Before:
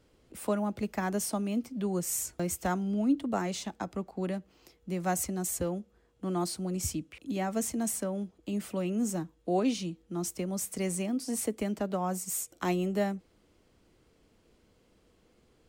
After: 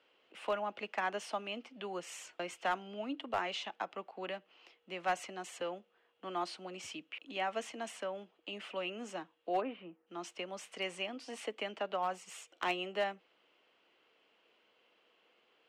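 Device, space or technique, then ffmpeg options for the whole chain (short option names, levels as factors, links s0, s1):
megaphone: -filter_complex "[0:a]highpass=660,lowpass=2900,equalizer=f=2900:t=o:w=0.48:g=10.5,asoftclip=type=hard:threshold=0.0447,asplit=3[s0][s1][s2];[s0]afade=t=out:st=9.6:d=0.02[s3];[s1]lowpass=f=1700:w=0.5412,lowpass=f=1700:w=1.3066,afade=t=in:st=9.6:d=0.02,afade=t=out:st=10.06:d=0.02[s4];[s2]afade=t=in:st=10.06:d=0.02[s5];[s3][s4][s5]amix=inputs=3:normalize=0,volume=1.12"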